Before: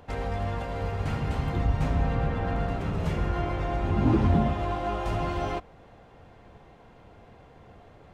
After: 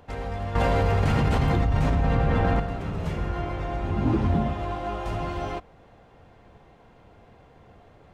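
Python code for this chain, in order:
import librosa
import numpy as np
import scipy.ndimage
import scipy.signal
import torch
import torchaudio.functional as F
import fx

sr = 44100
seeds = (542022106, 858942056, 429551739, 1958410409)

y = fx.env_flatten(x, sr, amount_pct=100, at=(0.55, 2.6))
y = y * 10.0 ** (-1.0 / 20.0)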